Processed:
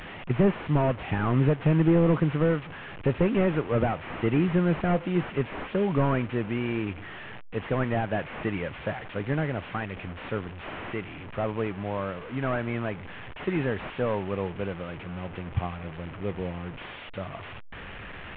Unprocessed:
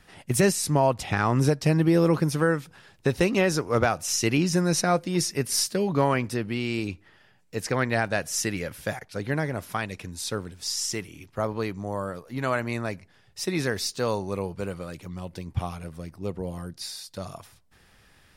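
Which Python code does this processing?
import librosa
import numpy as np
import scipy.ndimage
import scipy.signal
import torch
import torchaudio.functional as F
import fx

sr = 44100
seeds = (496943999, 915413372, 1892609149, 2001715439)

y = fx.delta_mod(x, sr, bps=16000, step_db=-34.0)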